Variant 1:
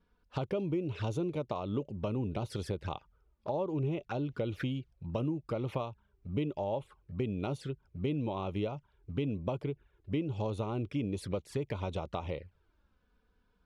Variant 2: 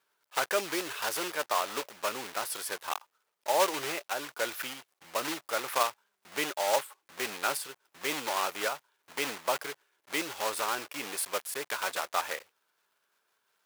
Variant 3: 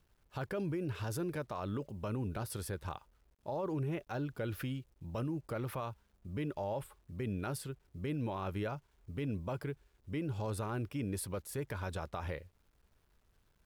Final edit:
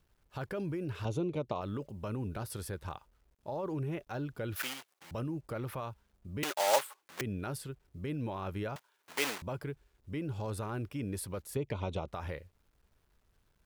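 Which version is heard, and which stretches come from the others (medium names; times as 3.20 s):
3
1.05–1.61 s: from 1
4.56–5.11 s: from 2
6.43–7.21 s: from 2
8.76–9.42 s: from 2
11.56–12.08 s: from 1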